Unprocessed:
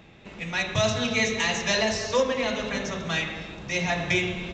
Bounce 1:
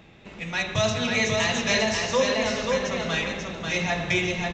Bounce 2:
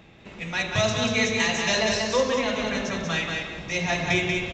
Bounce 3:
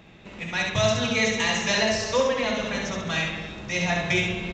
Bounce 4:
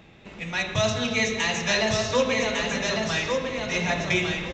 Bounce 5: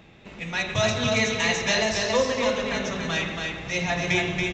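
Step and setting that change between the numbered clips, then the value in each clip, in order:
repeating echo, delay time: 540, 187, 68, 1,153, 280 milliseconds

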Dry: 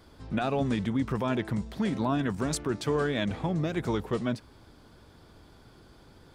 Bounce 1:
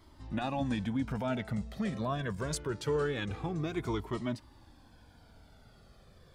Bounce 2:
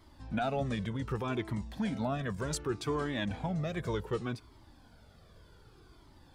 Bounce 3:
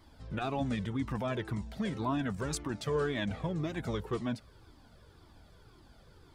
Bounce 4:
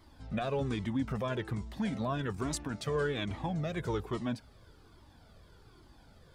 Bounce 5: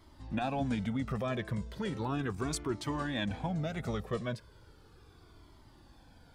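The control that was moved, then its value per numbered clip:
flanger whose copies keep moving one way, speed: 0.24, 0.66, 1.9, 1.2, 0.36 Hertz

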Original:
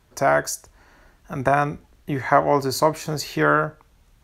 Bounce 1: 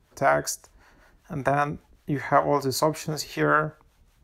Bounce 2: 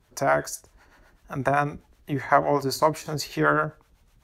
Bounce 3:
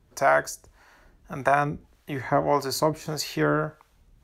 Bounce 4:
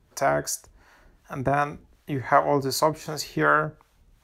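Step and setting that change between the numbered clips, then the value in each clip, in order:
two-band tremolo in antiphase, speed: 5.2, 7.9, 1.7, 2.7 Hertz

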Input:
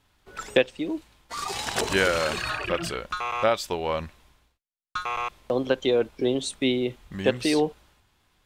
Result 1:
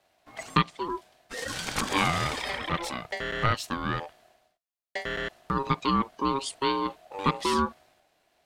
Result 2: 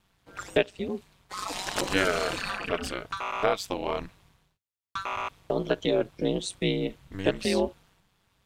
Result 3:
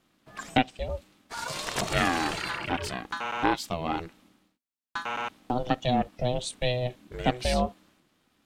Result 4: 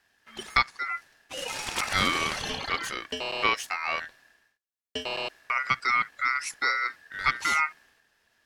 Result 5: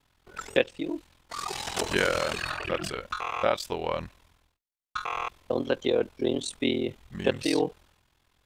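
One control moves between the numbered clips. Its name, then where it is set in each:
ring modulation, frequency: 680, 96, 250, 1,700, 21 Hertz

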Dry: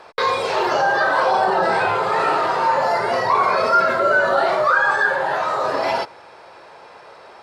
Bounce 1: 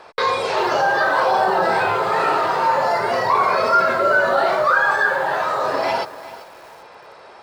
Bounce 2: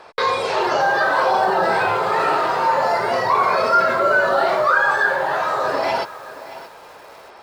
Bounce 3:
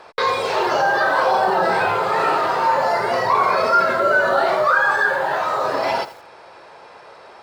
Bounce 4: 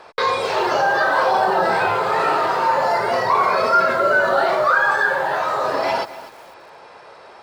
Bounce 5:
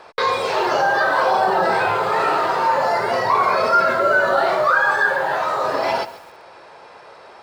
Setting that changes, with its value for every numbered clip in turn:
feedback echo at a low word length, delay time: 390, 626, 84, 247, 136 milliseconds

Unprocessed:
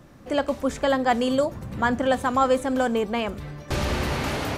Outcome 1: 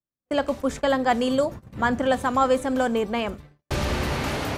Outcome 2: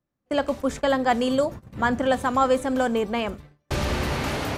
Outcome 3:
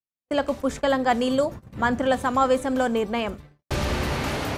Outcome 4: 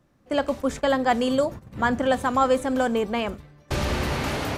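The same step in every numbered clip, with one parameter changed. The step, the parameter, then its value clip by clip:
noise gate, range: −48, −33, −60, −14 decibels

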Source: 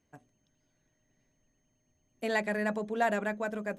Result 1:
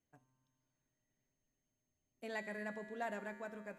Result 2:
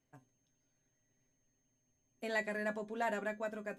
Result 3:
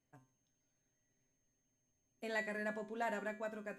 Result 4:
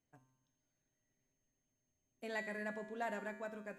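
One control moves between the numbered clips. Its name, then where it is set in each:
tuned comb filter, decay: 2.2, 0.15, 0.39, 0.93 seconds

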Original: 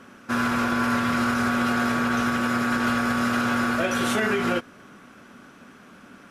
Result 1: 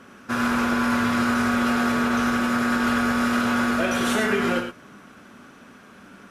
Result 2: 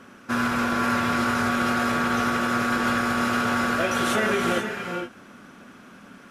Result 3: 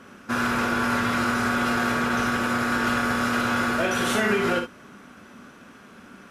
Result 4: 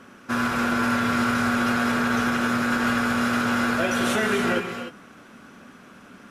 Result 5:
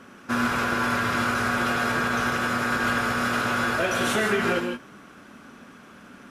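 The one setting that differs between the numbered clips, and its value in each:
reverb whose tail is shaped and stops, gate: 130, 500, 80, 320, 190 milliseconds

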